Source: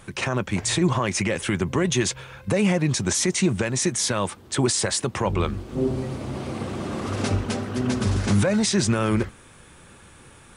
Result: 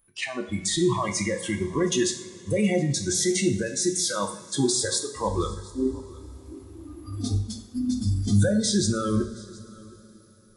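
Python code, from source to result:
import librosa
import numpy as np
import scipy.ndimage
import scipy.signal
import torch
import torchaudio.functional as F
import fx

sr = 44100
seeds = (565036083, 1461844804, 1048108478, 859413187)

p1 = fx.comb_fb(x, sr, f0_hz=360.0, decay_s=0.74, harmonics='all', damping=0.0, mix_pct=50)
p2 = fx.noise_reduce_blind(p1, sr, reduce_db=27)
p3 = p2 + fx.echo_single(p2, sr, ms=719, db=-23.0, dry=0)
p4 = fx.rev_double_slope(p3, sr, seeds[0], early_s=0.59, late_s=4.6, knee_db=-20, drr_db=5.0)
y = p4 * 10.0 ** (3.5 / 20.0)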